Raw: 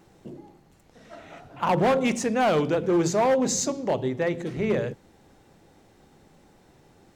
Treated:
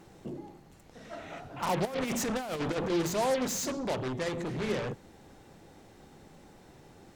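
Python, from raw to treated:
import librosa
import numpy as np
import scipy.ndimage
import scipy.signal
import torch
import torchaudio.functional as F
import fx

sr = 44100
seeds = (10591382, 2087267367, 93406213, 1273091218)

p1 = fx.fold_sine(x, sr, drive_db=15, ceiling_db=-16.5)
p2 = x + F.gain(torch.from_numpy(p1), -11.5).numpy()
p3 = fx.over_compress(p2, sr, threshold_db=-23.0, ratio=-0.5, at=(1.85, 2.9))
y = F.gain(torch.from_numpy(p3), -8.5).numpy()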